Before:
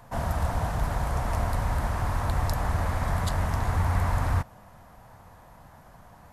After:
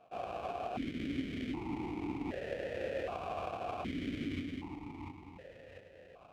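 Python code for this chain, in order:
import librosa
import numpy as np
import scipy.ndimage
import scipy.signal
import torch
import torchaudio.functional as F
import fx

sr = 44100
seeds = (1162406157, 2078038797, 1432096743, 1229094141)

y = fx.echo_split(x, sr, split_hz=580.0, low_ms=691, high_ms=190, feedback_pct=52, wet_db=-4.0)
y = fx.sample_hold(y, sr, seeds[0], rate_hz=1100.0, jitter_pct=20)
y = fx.vowel_held(y, sr, hz=1.3)
y = y * 10.0 ** (4.0 / 20.0)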